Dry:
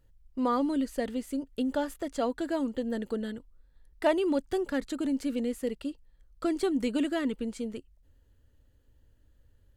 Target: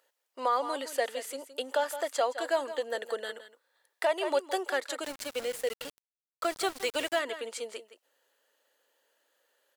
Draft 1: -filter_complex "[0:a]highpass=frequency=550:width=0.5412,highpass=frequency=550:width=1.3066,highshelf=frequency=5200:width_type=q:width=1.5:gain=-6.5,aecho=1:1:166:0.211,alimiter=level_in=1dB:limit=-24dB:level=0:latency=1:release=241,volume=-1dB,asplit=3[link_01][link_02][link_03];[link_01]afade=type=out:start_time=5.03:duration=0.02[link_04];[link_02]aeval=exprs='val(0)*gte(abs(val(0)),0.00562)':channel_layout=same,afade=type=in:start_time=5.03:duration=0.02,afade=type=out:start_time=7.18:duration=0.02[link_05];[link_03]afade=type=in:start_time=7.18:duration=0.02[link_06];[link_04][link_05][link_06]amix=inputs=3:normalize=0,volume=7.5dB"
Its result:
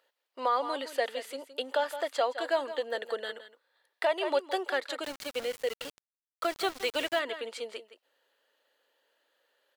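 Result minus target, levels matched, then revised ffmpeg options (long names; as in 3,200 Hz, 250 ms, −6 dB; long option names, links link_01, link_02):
8,000 Hz band −6.5 dB
-filter_complex "[0:a]highpass=frequency=550:width=0.5412,highpass=frequency=550:width=1.3066,aecho=1:1:166:0.211,alimiter=level_in=1dB:limit=-24dB:level=0:latency=1:release=241,volume=-1dB,asplit=3[link_01][link_02][link_03];[link_01]afade=type=out:start_time=5.03:duration=0.02[link_04];[link_02]aeval=exprs='val(0)*gte(abs(val(0)),0.00562)':channel_layout=same,afade=type=in:start_time=5.03:duration=0.02,afade=type=out:start_time=7.18:duration=0.02[link_05];[link_03]afade=type=in:start_time=7.18:duration=0.02[link_06];[link_04][link_05][link_06]amix=inputs=3:normalize=0,volume=7.5dB"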